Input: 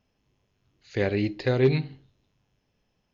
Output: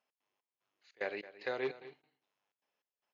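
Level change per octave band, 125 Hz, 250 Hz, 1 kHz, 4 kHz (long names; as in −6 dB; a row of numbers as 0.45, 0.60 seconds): −35.0, −21.5, −7.0, −12.5 decibels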